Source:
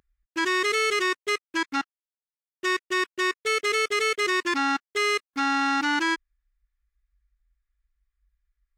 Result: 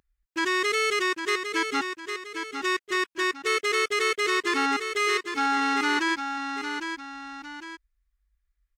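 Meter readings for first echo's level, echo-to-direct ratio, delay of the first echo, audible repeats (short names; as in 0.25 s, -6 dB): -7.0 dB, -6.5 dB, 0.805 s, 2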